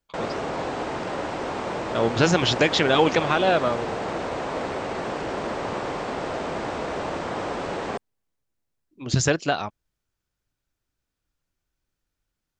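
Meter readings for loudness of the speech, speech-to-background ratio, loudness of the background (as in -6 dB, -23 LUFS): -22.0 LUFS, 7.5 dB, -29.5 LUFS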